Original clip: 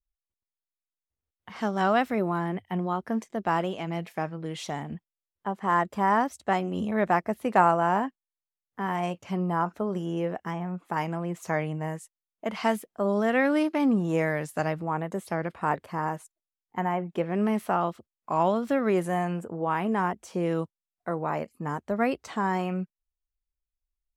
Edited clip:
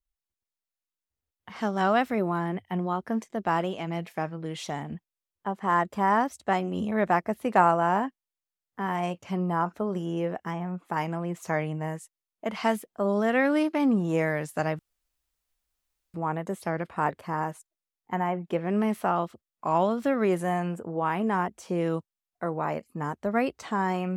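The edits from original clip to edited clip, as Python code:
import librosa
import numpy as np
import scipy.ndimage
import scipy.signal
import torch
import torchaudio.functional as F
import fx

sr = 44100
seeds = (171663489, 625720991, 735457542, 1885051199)

y = fx.edit(x, sr, fx.insert_room_tone(at_s=14.79, length_s=1.35), tone=tone)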